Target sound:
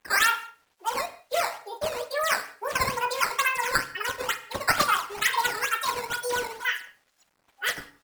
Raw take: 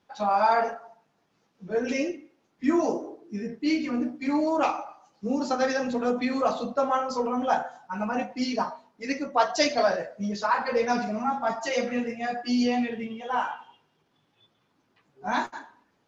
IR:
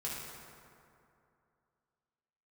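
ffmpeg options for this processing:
-filter_complex "[0:a]highpass=350,acrusher=samples=16:mix=1:aa=0.000001:lfo=1:lforange=25.6:lforate=1.1,aecho=1:1:98|196|294|392:0.126|0.0567|0.0255|0.0115,asplit=2[link_01][link_02];[1:a]atrim=start_sample=2205,afade=type=out:start_time=0.41:duration=0.01,atrim=end_sample=18522,asetrate=42336,aresample=44100[link_03];[link_02][link_03]afir=irnorm=-1:irlink=0,volume=-14dB[link_04];[link_01][link_04]amix=inputs=2:normalize=0,acrusher=bits=10:mix=0:aa=0.000001,asetrate=88200,aresample=44100"

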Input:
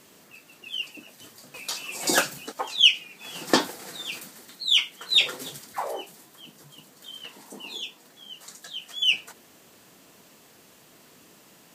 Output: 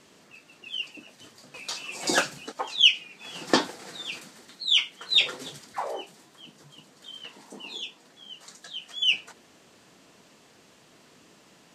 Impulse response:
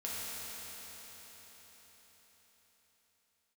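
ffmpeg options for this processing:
-af "lowpass=7100,volume=-1dB"

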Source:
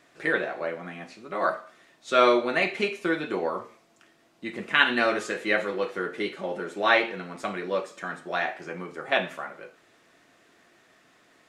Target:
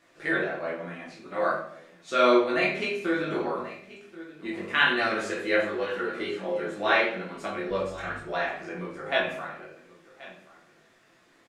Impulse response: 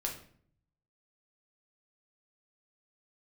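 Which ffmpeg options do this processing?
-filter_complex "[0:a]asettb=1/sr,asplit=3[link_01][link_02][link_03];[link_01]atrim=end=7.694[link_04];[link_02]atrim=start=7.69:end=8.2,asetpts=PTS-STARTPTS,afade=type=in:duration=0.004:curve=qsin,afade=type=out:start_time=0.506:duration=0.004:curve=qsin,aeval=exprs='val(0)+0.00501*(sin(2*PI*50*n/s)+sin(2*PI*2*50*n/s)/2+sin(2*PI*3*50*n/s)/3+sin(2*PI*4*50*n/s)/4+sin(2*PI*5*50*n/s)/5)':channel_layout=same[link_05];[link_03]atrim=start=8.196[link_06];[link_04][link_05]acrossfade=duration=0.004:curve1=hsin:curve2=qsin[link_07];[link_07][link_06]acrossfade=duration=0.004:curve1=qsin:curve2=hsin,aecho=1:1:1082:0.119,flanger=delay=18.5:depth=3.3:speed=1.2[link_08];[1:a]atrim=start_sample=2205[link_09];[link_08][link_09]afir=irnorm=-1:irlink=0"

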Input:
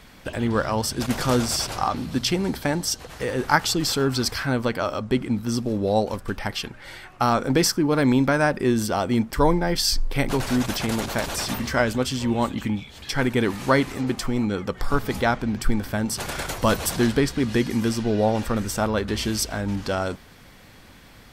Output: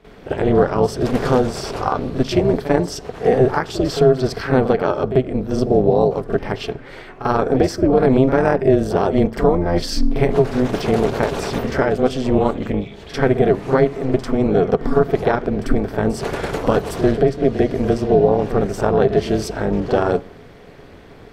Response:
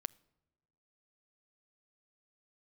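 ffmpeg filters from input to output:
-filter_complex "[0:a]lowpass=frequency=1900:poles=1,equalizer=frequency=420:width_type=o:width=0.48:gain=14.5,alimiter=limit=-10.5dB:level=0:latency=1:release=430,tremolo=f=260:d=0.824,asplit=2[link_01][link_02];[1:a]atrim=start_sample=2205,adelay=45[link_03];[link_02][link_03]afir=irnorm=-1:irlink=0,volume=13.5dB[link_04];[link_01][link_04]amix=inputs=2:normalize=0,volume=-3dB"

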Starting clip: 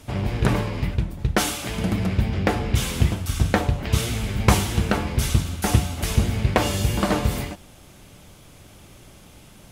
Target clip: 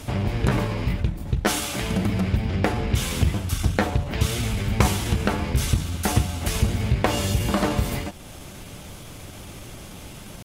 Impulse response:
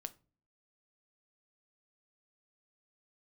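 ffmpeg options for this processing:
-af "atempo=0.93,acompressor=threshold=-44dB:ratio=1.5,volume=8.5dB"

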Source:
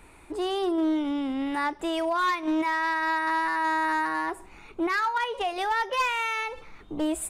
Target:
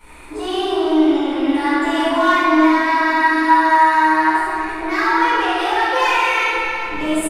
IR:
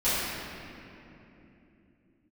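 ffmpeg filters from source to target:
-filter_complex "[0:a]lowshelf=frequency=450:gain=-7.5,asplit=2[link_01][link_02];[link_02]acompressor=threshold=-37dB:ratio=6,volume=2dB[link_03];[link_01][link_03]amix=inputs=2:normalize=0,aecho=1:1:64|332|785:0.596|0.355|0.126[link_04];[1:a]atrim=start_sample=2205[link_05];[link_04][link_05]afir=irnorm=-1:irlink=0,volume=-6.5dB"

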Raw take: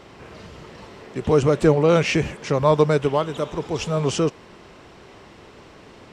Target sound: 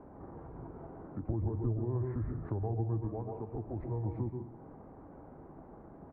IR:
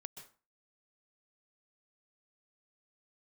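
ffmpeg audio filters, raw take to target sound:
-filter_complex "[0:a]asetrate=33038,aresample=44100,atempo=1.33484,lowpass=frequency=1100:width=0.5412,lowpass=frequency=1100:width=1.3066,bandreject=frequency=153.6:width_type=h:width=4,bandreject=frequency=307.2:width_type=h:width=4,bandreject=frequency=460.8:width_type=h:width=4,bandreject=frequency=614.4:width_type=h:width=4,bandreject=frequency=768:width_type=h:width=4,bandreject=frequency=921.6:width_type=h:width=4,bandreject=frequency=1075.2:width_type=h:width=4,bandreject=frequency=1228.8:width_type=h:width=4,bandreject=frequency=1382.4:width_type=h:width=4,bandreject=frequency=1536:width_type=h:width=4,bandreject=frequency=1689.6:width_type=h:width=4,bandreject=frequency=1843.2:width_type=h:width=4,bandreject=frequency=1996.8:width_type=h:width=4,bandreject=frequency=2150.4:width_type=h:width=4,bandreject=frequency=2304:width_type=h:width=4,bandreject=frequency=2457.6:width_type=h:width=4,bandreject=frequency=2611.2:width_type=h:width=4,bandreject=frequency=2764.8:width_type=h:width=4,bandreject=frequency=2918.4:width_type=h:width=4,bandreject=frequency=3072:width_type=h:width=4,bandreject=frequency=3225.6:width_type=h:width=4,bandreject=frequency=3379.2:width_type=h:width=4,bandreject=frequency=3532.8:width_type=h:width=4,bandreject=frequency=3686.4:width_type=h:width=4,bandreject=frequency=3840:width_type=h:width=4,bandreject=frequency=3993.6:width_type=h:width=4,bandreject=frequency=4147.2:width_type=h:width=4[link_01];[1:a]atrim=start_sample=2205[link_02];[link_01][link_02]afir=irnorm=-1:irlink=0,acrossover=split=110[link_03][link_04];[link_04]acompressor=threshold=-39dB:ratio=5[link_05];[link_03][link_05]amix=inputs=2:normalize=0"

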